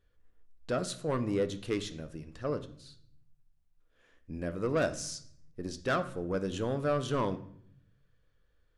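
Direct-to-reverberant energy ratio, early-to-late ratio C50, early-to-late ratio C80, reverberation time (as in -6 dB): 10.0 dB, 14.5 dB, 17.5 dB, 0.65 s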